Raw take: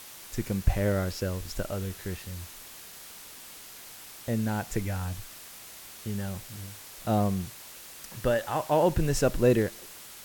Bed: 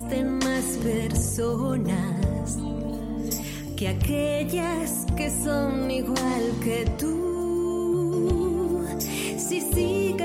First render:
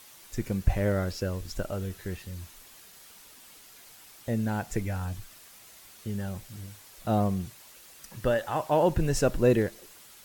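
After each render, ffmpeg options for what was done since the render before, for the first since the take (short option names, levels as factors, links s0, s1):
-af "afftdn=nr=7:nf=-47"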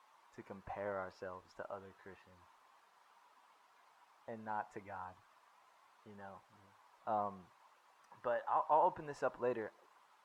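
-af "bandpass=f=980:t=q:w=3.4:csg=0"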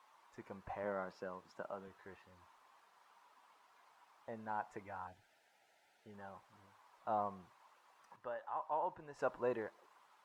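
-filter_complex "[0:a]asettb=1/sr,asplit=3[s0][s1][s2];[s0]atrim=end=0.834[s3];[s1]atrim=start=0.83:end=1.88,asetpts=PTS-STARTPTS,afade=t=in:d=0.004:c=qsin,afade=t=out:st=1.046:d=0.004:c=qsin,highpass=f=160:t=q:w=1.8[s4];[s2]atrim=start=1.876[s5];[s3][s4]acrossfade=d=0.004:c1=hsin:c2=qsin[s6];[s6][s5]acrossfade=d=0.004:c1=qsin:c2=hsin,asettb=1/sr,asplit=3[s7][s8][s9];[s7]atrim=end=5.074[s10];[s8]atrim=start=5.07:end=6.14,asetpts=PTS-STARTPTS,afade=t=in:d=0.004:c=qsin,afade=t=out:st=1.066:d=0.004:c=qsin,asuperstop=centerf=1100:order=4:qfactor=1.7[s11];[s9]atrim=start=6.136[s12];[s10][s11]acrossfade=d=0.004:c1=hsin:c2=qsin[s13];[s13][s12]acrossfade=d=0.004:c1=qsin:c2=hsin,asplit=3[s14][s15][s16];[s14]atrim=end=8.162[s17];[s15]atrim=start=8.158:end=9.192,asetpts=PTS-STARTPTS,volume=0.447[s18];[s16]atrim=start=9.188[s19];[s17][s18]acrossfade=d=0.004:c1=hsin:c2=hsin[s20];[s20][s19]acrossfade=d=0.004:c1=hsin:c2=hsin"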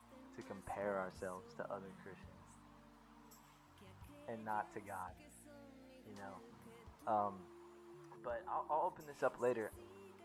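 -filter_complex "[1:a]volume=0.0178[s0];[0:a][s0]amix=inputs=2:normalize=0"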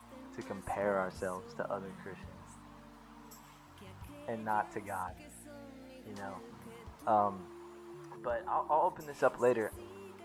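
-af "volume=2.66"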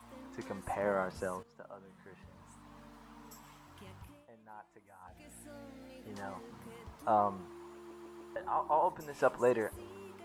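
-filter_complex "[0:a]asplit=8[s0][s1][s2][s3][s4][s5][s6][s7];[s0]atrim=end=1.43,asetpts=PTS-STARTPTS,afade=t=out:st=1.426:d=0.004:c=hsin:silence=0.199526[s8];[s1]atrim=start=1.43:end=4.27,asetpts=PTS-STARTPTS,afade=t=in:d=1.4:c=qua:silence=0.199526,afade=t=out:st=2.36:d=0.48:c=qsin:silence=0.112202[s9];[s2]atrim=start=4.27:end=5.01,asetpts=PTS-STARTPTS,volume=0.112[s10];[s3]atrim=start=5.01:end=7.912,asetpts=PTS-STARTPTS,afade=t=in:d=0.48:c=qsin:silence=0.112202[s11];[s4]atrim=start=7.758:end=7.912[s12];[s5]atrim=start=7.758:end=7.912[s13];[s6]atrim=start=7.758:end=7.912[s14];[s7]atrim=start=8.358[s15];[s8][s9][s10][s11]concat=n=4:v=0:a=1[s16];[s16][s12]acrossfade=d=0.004:c1=hsin:c2=hsin[s17];[s17][s13]acrossfade=d=0.004:c1=hsin:c2=hsin[s18];[s18][s14]acrossfade=d=0.004:c1=hsin:c2=hsin[s19];[s19][s15]acrossfade=d=0.004:c1=hsin:c2=hsin"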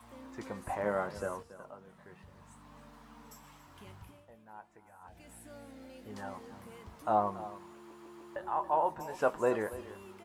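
-filter_complex "[0:a]asplit=2[s0][s1];[s1]adelay=19,volume=0.282[s2];[s0][s2]amix=inputs=2:normalize=0,aecho=1:1:280:0.168"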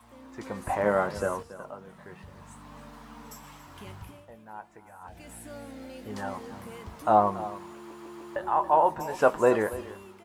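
-af "dynaudnorm=f=110:g=9:m=2.51"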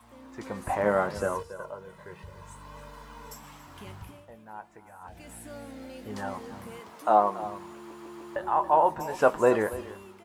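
-filter_complex "[0:a]asettb=1/sr,asplit=3[s0][s1][s2];[s0]atrim=end=1.354[s3];[s1]atrim=start=1.35:end=3.35,asetpts=PTS-STARTPTS,afade=t=in:d=0.004:c=qsin,afade=t=out:st=1.996:d=0.004:c=qsin,aecho=1:1:2:0.65,atrim=end_sample=88200[s4];[s2]atrim=start=3.346[s5];[s3][s4]acrossfade=d=0.004:c1=hsin:c2=qsin[s6];[s6][s5]acrossfade=d=0.004:c1=qsin:c2=hsin,asettb=1/sr,asplit=3[s7][s8][s9];[s7]atrim=end=6.804[s10];[s8]atrim=start=6.8:end=7.43,asetpts=PTS-STARTPTS,afade=t=in:d=0.004:c=qsin,afade=t=out:st=0.626:d=0.004:c=qsin,highpass=280[s11];[s9]atrim=start=7.426[s12];[s10][s11]acrossfade=d=0.004:c1=hsin:c2=qsin[s13];[s13][s12]acrossfade=d=0.004:c1=qsin:c2=hsin"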